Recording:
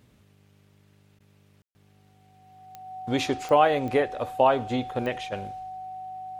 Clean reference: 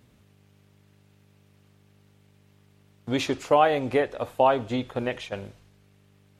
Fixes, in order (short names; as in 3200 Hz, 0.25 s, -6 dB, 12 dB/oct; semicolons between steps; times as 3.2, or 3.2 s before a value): de-click; notch 750 Hz, Q 30; room tone fill 1.62–1.75; interpolate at 1.19, 12 ms